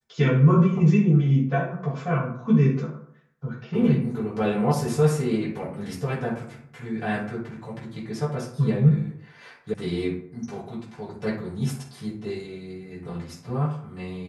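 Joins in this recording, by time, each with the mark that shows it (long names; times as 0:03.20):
0:09.74: cut off before it has died away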